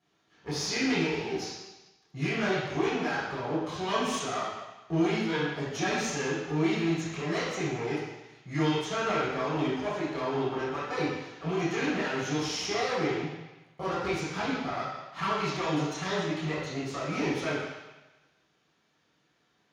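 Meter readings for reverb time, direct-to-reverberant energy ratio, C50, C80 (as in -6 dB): 1.1 s, -10.0 dB, -0.5 dB, 2.0 dB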